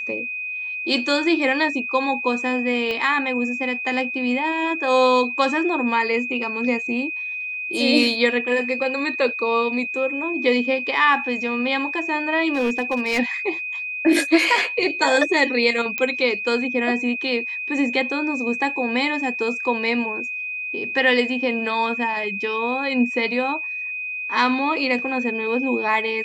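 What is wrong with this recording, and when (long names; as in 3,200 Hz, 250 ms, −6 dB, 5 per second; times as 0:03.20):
whistle 2,500 Hz −26 dBFS
0:02.91: click −15 dBFS
0:12.53–0:13.20: clipping −16.5 dBFS
0:15.98: click −9 dBFS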